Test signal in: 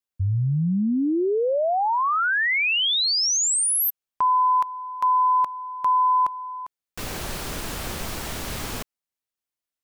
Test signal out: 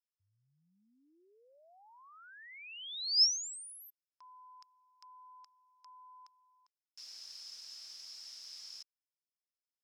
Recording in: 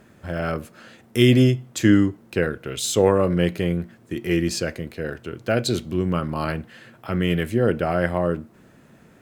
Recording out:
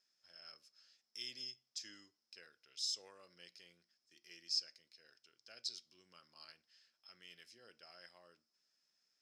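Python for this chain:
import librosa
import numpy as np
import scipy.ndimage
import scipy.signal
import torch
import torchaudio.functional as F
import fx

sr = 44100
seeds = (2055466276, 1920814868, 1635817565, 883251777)

y = fx.bandpass_q(x, sr, hz=5200.0, q=14.0)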